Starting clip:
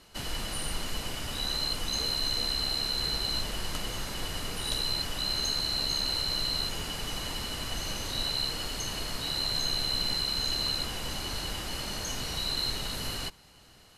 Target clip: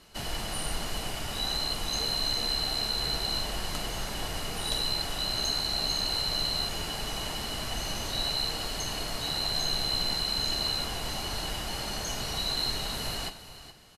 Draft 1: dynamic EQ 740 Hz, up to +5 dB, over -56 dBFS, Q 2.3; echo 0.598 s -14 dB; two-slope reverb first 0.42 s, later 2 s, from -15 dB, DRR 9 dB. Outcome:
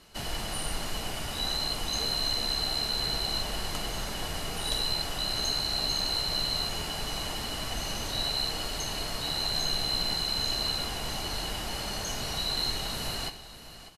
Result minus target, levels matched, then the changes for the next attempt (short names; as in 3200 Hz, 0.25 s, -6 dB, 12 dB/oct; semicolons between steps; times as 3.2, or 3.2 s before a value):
echo 0.178 s late
change: echo 0.42 s -14 dB